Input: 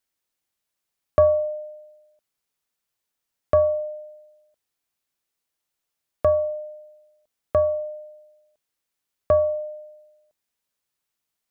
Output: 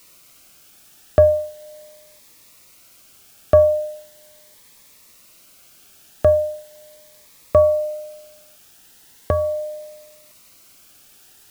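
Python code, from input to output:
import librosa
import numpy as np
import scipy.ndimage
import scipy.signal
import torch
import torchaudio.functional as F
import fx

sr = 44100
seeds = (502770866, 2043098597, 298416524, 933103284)

p1 = fx.quant_dither(x, sr, seeds[0], bits=8, dither='triangular')
p2 = x + F.gain(torch.from_numpy(p1), -6.0).numpy()
p3 = fx.notch_cascade(p2, sr, direction='rising', hz=0.39)
y = F.gain(torch.from_numpy(p3), 4.0).numpy()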